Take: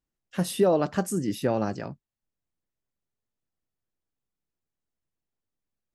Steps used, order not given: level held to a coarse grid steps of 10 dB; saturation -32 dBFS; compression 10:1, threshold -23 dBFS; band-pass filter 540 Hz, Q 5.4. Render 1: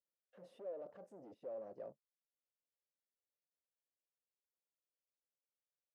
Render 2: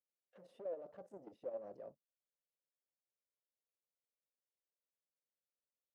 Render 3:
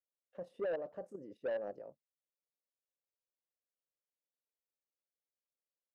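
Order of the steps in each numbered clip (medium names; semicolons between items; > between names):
compression > saturation > level held to a coarse grid > band-pass filter; compression > saturation > band-pass filter > level held to a coarse grid; band-pass filter > compression > level held to a coarse grid > saturation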